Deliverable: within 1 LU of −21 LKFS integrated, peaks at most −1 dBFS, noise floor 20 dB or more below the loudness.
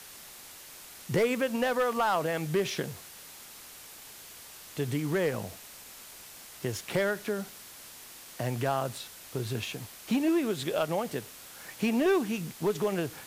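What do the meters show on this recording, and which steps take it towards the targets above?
share of clipped samples 0.5%; peaks flattened at −20.0 dBFS; background noise floor −49 dBFS; target noise floor −51 dBFS; integrated loudness −30.5 LKFS; sample peak −20.0 dBFS; target loudness −21.0 LKFS
→ clipped peaks rebuilt −20 dBFS
noise reduction from a noise print 6 dB
level +9.5 dB

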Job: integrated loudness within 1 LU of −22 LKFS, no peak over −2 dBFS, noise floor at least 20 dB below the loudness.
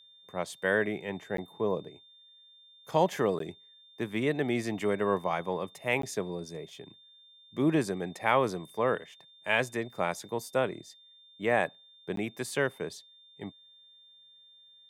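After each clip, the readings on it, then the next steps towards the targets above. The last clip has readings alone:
number of dropouts 4; longest dropout 13 ms; interfering tone 3,600 Hz; level of the tone −55 dBFS; integrated loudness −31.0 LKFS; sample peak −9.5 dBFS; target loudness −22.0 LKFS
→ repair the gap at 0:01.37/0:03.39/0:06.02/0:12.16, 13 ms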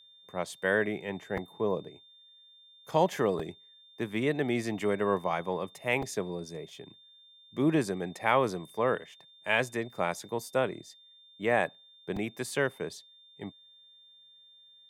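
number of dropouts 0; interfering tone 3,600 Hz; level of the tone −55 dBFS
→ notch filter 3,600 Hz, Q 30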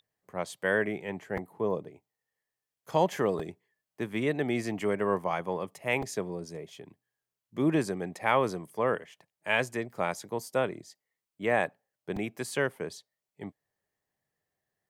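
interfering tone none found; integrated loudness −31.0 LKFS; sample peak −9.5 dBFS; target loudness −22.0 LKFS
→ level +9 dB
brickwall limiter −2 dBFS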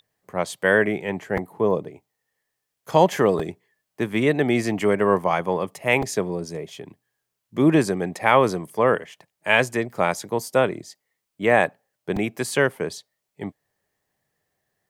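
integrated loudness −22.0 LKFS; sample peak −2.0 dBFS; background noise floor −81 dBFS

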